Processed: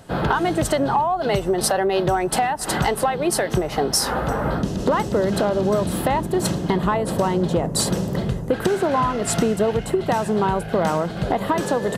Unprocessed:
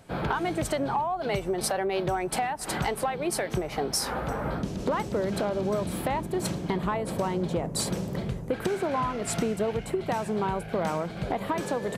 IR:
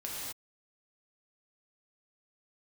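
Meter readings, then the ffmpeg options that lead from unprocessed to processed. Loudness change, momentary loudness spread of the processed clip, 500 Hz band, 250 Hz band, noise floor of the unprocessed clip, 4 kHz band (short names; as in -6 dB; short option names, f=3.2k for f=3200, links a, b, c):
+8.0 dB, 3 LU, +8.0 dB, +8.0 dB, -38 dBFS, +8.0 dB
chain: -af "bandreject=f=2.3k:w=7,volume=8dB"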